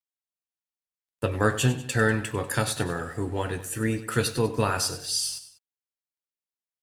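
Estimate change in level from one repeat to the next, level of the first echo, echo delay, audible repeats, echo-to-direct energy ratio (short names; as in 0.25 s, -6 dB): -5.5 dB, -14.0 dB, 97 ms, 2, -13.0 dB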